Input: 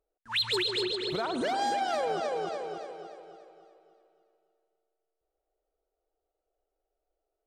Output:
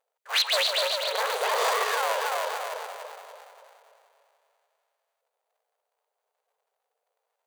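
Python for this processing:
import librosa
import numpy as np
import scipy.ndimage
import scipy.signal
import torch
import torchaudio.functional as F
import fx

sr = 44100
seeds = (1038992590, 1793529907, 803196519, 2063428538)

y = fx.cycle_switch(x, sr, every=2, mode='inverted')
y = fx.brickwall_highpass(y, sr, low_hz=410.0)
y = fx.notch(y, sr, hz=5300.0, q=13.0)
y = F.gain(torch.from_numpy(y), 5.0).numpy()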